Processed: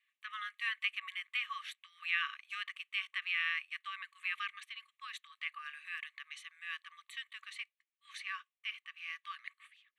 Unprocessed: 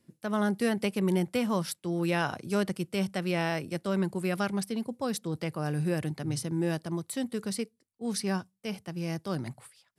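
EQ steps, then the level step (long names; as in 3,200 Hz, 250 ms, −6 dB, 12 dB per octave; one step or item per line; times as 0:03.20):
linear-phase brick-wall high-pass 1,100 Hz
high-frequency loss of the air 200 metres
phaser with its sweep stopped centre 1,400 Hz, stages 6
+7.0 dB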